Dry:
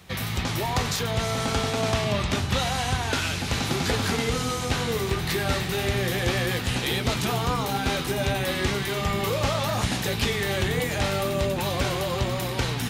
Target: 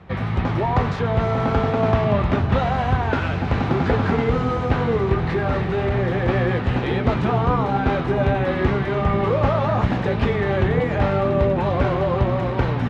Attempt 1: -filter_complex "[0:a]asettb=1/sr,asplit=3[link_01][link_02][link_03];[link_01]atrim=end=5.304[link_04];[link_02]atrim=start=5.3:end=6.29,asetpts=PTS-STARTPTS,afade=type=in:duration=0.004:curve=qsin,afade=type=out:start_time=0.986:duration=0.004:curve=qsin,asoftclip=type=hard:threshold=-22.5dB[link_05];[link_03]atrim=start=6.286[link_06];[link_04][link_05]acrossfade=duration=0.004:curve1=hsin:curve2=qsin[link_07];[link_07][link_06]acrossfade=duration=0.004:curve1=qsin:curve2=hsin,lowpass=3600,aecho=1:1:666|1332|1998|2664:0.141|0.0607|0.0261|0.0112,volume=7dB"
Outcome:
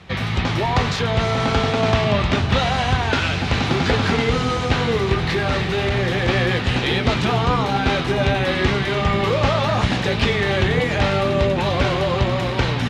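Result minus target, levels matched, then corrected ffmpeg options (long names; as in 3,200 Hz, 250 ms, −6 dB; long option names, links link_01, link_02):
4,000 Hz band +12.0 dB
-filter_complex "[0:a]asettb=1/sr,asplit=3[link_01][link_02][link_03];[link_01]atrim=end=5.304[link_04];[link_02]atrim=start=5.3:end=6.29,asetpts=PTS-STARTPTS,afade=type=in:duration=0.004:curve=qsin,afade=type=out:start_time=0.986:duration=0.004:curve=qsin,asoftclip=type=hard:threshold=-22.5dB[link_05];[link_03]atrim=start=6.286[link_06];[link_04][link_05]acrossfade=duration=0.004:curve1=hsin:curve2=qsin[link_07];[link_07][link_06]acrossfade=duration=0.004:curve1=qsin:curve2=hsin,lowpass=1400,aecho=1:1:666|1332|1998|2664:0.141|0.0607|0.0261|0.0112,volume=7dB"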